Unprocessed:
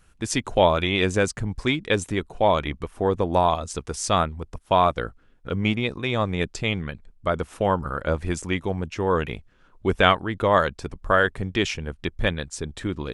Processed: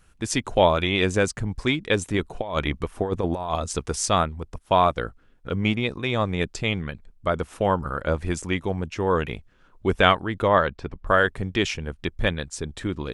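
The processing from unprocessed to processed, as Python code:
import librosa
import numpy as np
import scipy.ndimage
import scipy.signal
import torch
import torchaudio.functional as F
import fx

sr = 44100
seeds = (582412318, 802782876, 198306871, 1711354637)

y = fx.over_compress(x, sr, threshold_db=-23.0, ratio=-0.5, at=(2.14, 4.06))
y = fx.lowpass(y, sr, hz=3400.0, slope=12, at=(10.48, 11.07))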